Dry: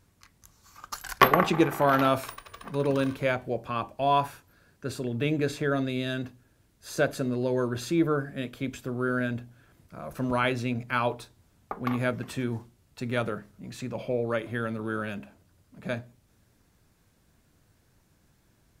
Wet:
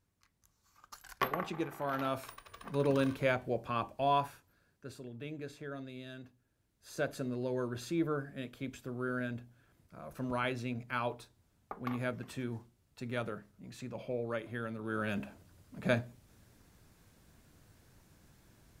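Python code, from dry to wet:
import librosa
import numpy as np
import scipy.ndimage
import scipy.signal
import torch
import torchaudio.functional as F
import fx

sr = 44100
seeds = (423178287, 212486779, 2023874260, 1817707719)

y = fx.gain(x, sr, db=fx.line((1.81, -14.5), (2.78, -4.0), (3.91, -4.0), (5.2, -16.5), (6.22, -16.5), (7.17, -8.5), (14.81, -8.5), (15.21, 2.0)))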